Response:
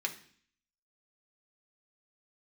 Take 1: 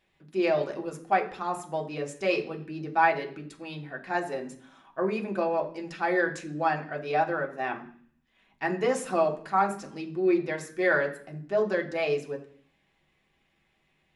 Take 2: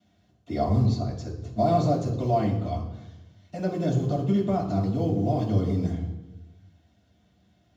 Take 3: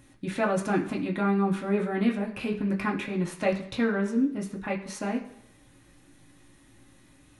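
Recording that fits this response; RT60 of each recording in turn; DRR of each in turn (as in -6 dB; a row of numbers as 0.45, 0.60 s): 1; 0.50 s, 1.1 s, not exponential; 1.5, -12.0, -2.0 dB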